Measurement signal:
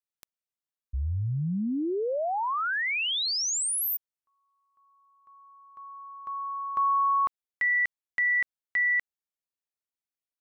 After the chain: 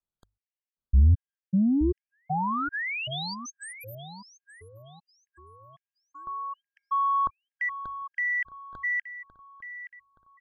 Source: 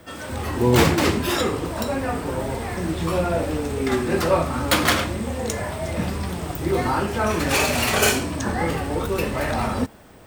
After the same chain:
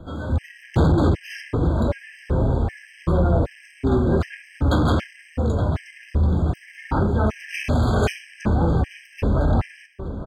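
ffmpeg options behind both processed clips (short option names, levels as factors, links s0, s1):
-filter_complex "[0:a]aemphasis=mode=reproduction:type=riaa,bandreject=f=50:t=h:w=6,bandreject=f=100:t=h:w=6,asoftclip=type=tanh:threshold=0.237,asplit=2[s0][s1];[s1]adelay=873,lowpass=f=3700:p=1,volume=0.251,asplit=2[s2][s3];[s3]adelay=873,lowpass=f=3700:p=1,volume=0.45,asplit=2[s4][s5];[s5]adelay=873,lowpass=f=3700:p=1,volume=0.45,asplit=2[s6][s7];[s7]adelay=873,lowpass=f=3700:p=1,volume=0.45,asplit=2[s8][s9];[s9]adelay=873,lowpass=f=3700:p=1,volume=0.45[s10];[s0][s2][s4][s6][s8][s10]amix=inputs=6:normalize=0,afftfilt=real='re*gt(sin(2*PI*1.3*pts/sr)*(1-2*mod(floor(b*sr/1024/1600),2)),0)':imag='im*gt(sin(2*PI*1.3*pts/sr)*(1-2*mod(floor(b*sr/1024/1600),2)),0)':win_size=1024:overlap=0.75"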